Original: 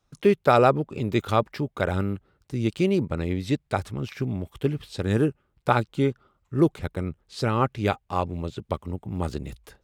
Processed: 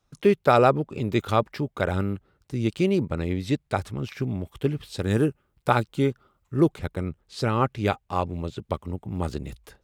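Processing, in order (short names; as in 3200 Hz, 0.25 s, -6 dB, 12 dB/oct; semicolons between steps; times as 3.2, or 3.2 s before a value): 4.85–6.57 high shelf 8500 Hz +7 dB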